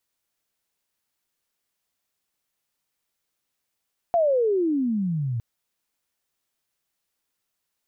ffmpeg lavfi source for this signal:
ffmpeg -f lavfi -i "aevalsrc='pow(10,(-16.5-7.5*t/1.26)/20)*sin(2*PI*707*1.26/(-32*log(2)/12)*(exp(-32*log(2)/12*t/1.26)-1))':duration=1.26:sample_rate=44100" out.wav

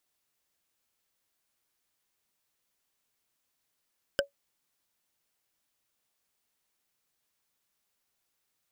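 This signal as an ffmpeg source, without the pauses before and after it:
ffmpeg -f lavfi -i "aevalsrc='0.112*pow(10,-3*t/0.12)*sin(2*PI*562*t)+0.1*pow(10,-3*t/0.036)*sin(2*PI*1549.4*t)+0.0891*pow(10,-3*t/0.016)*sin(2*PI*3037*t)+0.0794*pow(10,-3*t/0.009)*sin(2*PI*5020.3*t)+0.0708*pow(10,-3*t/0.005)*sin(2*PI*7497.1*t)':duration=0.45:sample_rate=44100" out.wav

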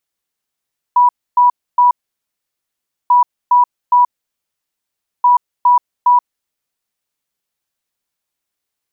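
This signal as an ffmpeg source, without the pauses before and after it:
ffmpeg -f lavfi -i "aevalsrc='0.501*sin(2*PI*979*t)*clip(min(mod(mod(t,2.14),0.41),0.13-mod(mod(t,2.14),0.41))/0.005,0,1)*lt(mod(t,2.14),1.23)':duration=6.42:sample_rate=44100" out.wav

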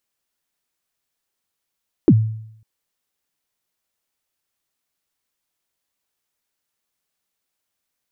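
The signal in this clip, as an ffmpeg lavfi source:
ffmpeg -f lavfi -i "aevalsrc='0.562*pow(10,-3*t/0.72)*sin(2*PI*(390*0.054/log(110/390)*(exp(log(110/390)*min(t,0.054)/0.054)-1)+110*max(t-0.054,0)))':duration=0.55:sample_rate=44100" out.wav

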